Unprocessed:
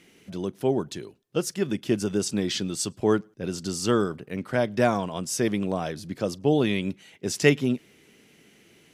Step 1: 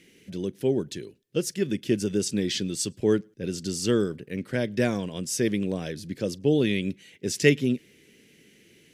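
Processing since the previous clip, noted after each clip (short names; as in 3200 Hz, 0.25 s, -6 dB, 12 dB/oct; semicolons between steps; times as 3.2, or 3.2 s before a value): band shelf 940 Hz -11.5 dB 1.3 oct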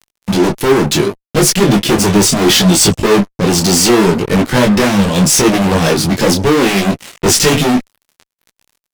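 bell 1100 Hz -3 dB 0.64 oct; fuzz box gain 40 dB, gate -47 dBFS; detuned doubles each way 24 cents; gain +8.5 dB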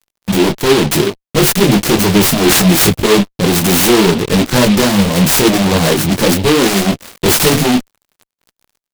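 noise-modulated delay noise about 2700 Hz, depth 0.11 ms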